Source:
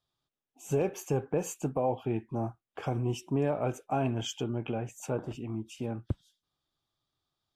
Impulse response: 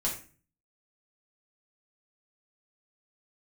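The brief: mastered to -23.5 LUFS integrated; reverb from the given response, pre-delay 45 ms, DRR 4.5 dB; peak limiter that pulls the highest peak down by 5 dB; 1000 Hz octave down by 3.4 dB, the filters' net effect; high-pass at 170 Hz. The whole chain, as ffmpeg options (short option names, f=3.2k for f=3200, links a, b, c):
-filter_complex "[0:a]highpass=170,equalizer=f=1k:t=o:g=-5,alimiter=limit=-24dB:level=0:latency=1,asplit=2[a][b];[1:a]atrim=start_sample=2205,adelay=45[c];[b][c]afir=irnorm=-1:irlink=0,volume=-9.5dB[d];[a][d]amix=inputs=2:normalize=0,volume=11.5dB"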